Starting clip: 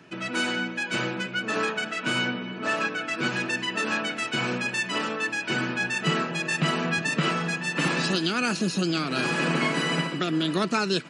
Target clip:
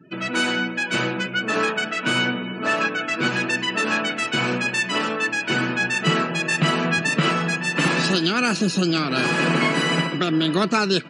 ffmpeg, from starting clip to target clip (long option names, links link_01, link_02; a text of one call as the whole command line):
ffmpeg -i in.wav -af "afftdn=noise_reduction=30:noise_floor=-47,acontrast=27" out.wav